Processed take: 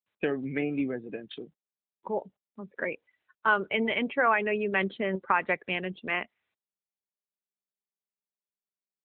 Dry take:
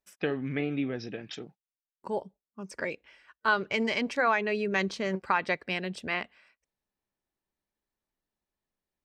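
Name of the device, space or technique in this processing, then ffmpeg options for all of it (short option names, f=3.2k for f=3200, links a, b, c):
mobile call with aggressive noise cancelling: -af "highpass=170,afftdn=nr=27:nf=-42,volume=2dB" -ar 8000 -c:a libopencore_amrnb -b:a 12200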